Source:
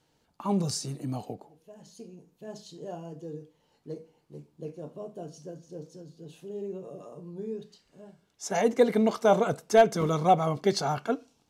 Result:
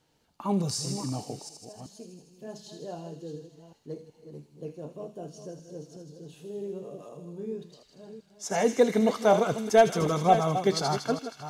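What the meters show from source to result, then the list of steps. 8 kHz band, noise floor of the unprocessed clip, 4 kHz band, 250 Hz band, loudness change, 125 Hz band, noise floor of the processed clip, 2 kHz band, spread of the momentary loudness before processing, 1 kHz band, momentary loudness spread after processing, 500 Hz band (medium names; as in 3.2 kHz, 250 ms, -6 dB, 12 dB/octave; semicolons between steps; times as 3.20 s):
+2.5 dB, -71 dBFS, +2.0 dB, +0.5 dB, +0.5 dB, +0.5 dB, -65 dBFS, +0.5 dB, 21 LU, +0.5 dB, 21 LU, +0.5 dB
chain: chunks repeated in reverse 373 ms, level -10 dB; feedback echo behind a high-pass 79 ms, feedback 76%, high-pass 2.9 kHz, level -6 dB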